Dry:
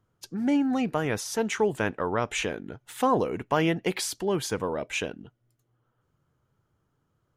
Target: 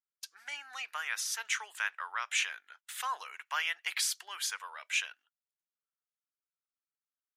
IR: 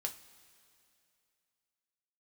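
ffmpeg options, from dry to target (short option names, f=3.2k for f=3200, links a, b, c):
-af "highpass=f=1.3k:w=0.5412,highpass=f=1.3k:w=1.3066,agate=range=-23dB:threshold=-57dB:ratio=16:detection=peak"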